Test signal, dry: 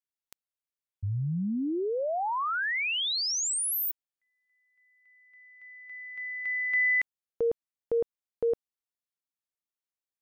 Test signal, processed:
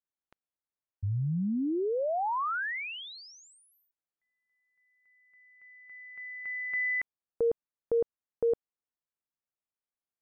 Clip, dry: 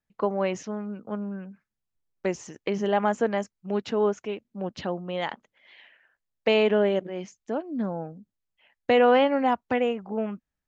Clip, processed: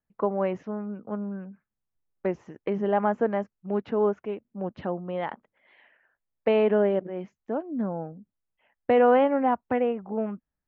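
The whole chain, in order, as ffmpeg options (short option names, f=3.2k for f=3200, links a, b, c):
-af "lowpass=1.6k"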